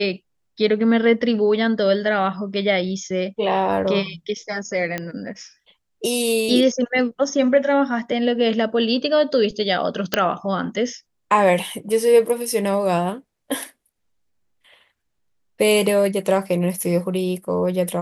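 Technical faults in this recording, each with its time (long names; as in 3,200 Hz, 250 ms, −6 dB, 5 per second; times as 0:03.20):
0:04.98: click −11 dBFS
0:10.14: click −2 dBFS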